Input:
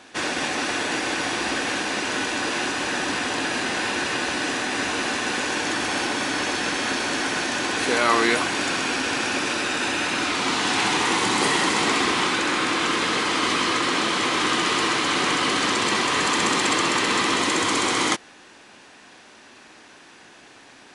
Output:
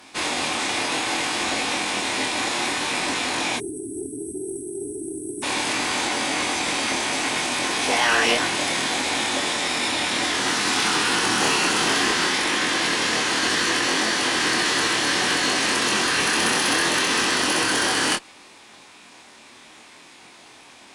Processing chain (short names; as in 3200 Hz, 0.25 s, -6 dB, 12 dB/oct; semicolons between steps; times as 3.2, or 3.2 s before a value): spectral delete 3.57–5.43, 410–5500 Hz; chorus 0.64 Hz, depth 3.9 ms; formant shift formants +6 st; tube stage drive 14 dB, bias 0.25; gain +4.5 dB